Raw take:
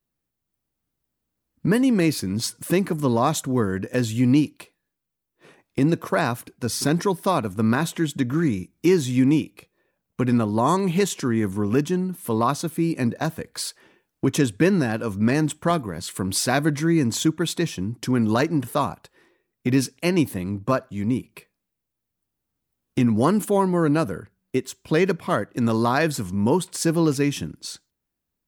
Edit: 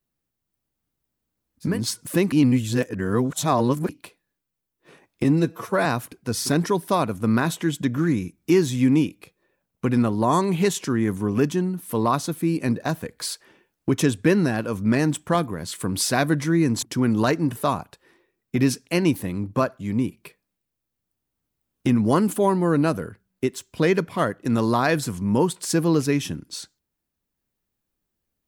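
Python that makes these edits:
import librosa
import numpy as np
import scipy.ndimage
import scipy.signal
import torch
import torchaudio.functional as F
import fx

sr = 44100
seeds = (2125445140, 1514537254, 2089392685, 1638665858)

y = fx.edit(x, sr, fx.cut(start_s=1.72, length_s=0.56, crossfade_s=0.24),
    fx.reverse_span(start_s=2.88, length_s=1.57),
    fx.stretch_span(start_s=5.8, length_s=0.41, factor=1.5),
    fx.cut(start_s=17.18, length_s=0.76), tone=tone)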